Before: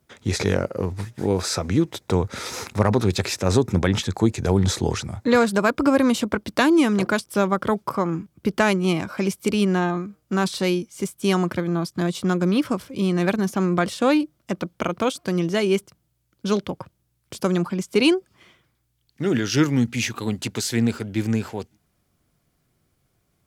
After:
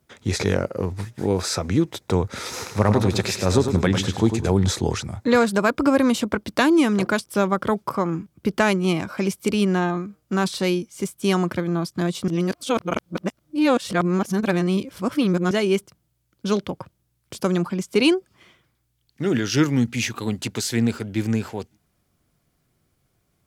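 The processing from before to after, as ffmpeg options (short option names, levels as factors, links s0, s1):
-filter_complex "[0:a]asettb=1/sr,asplit=3[s0][s1][s2];[s0]atrim=end=2.504[s3];[s1]atrim=start=2.5:end=4.54,asetpts=PTS-STARTPTS,afade=t=in:d=0.004:c=qsin,afade=t=out:st=2.036:d=0.004:c=qsin,aecho=1:1:100|200|300|400:0.422|0.156|0.0577|0.0214,atrim=end_sample=89964[s4];[s2]atrim=start=4.536[s5];[s3][s4]acrossfade=d=0.004:c1=hsin:c2=qsin[s6];[s6][s5]acrossfade=d=0.004:c1=qsin:c2=hsin,asplit=3[s7][s8][s9];[s7]atrim=end=12.282[s10];[s8]atrim=start=12.278:end=15.512,asetpts=PTS-STARTPTS,areverse[s11];[s9]atrim=start=15.508[s12];[s10][s11]acrossfade=d=0.004:c1=hsin:c2=hsin[s13];[s13][s12]acrossfade=d=0.004:c1=hsin:c2=hsin"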